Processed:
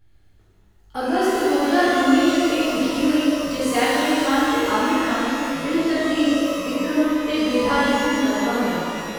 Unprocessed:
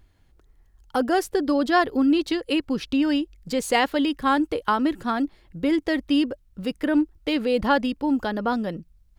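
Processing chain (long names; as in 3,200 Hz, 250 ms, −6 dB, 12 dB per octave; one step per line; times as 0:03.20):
notch filter 1,000 Hz, Q 8.1
reverb with rising layers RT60 2.5 s, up +12 semitones, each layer −8 dB, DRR −11 dB
level −8 dB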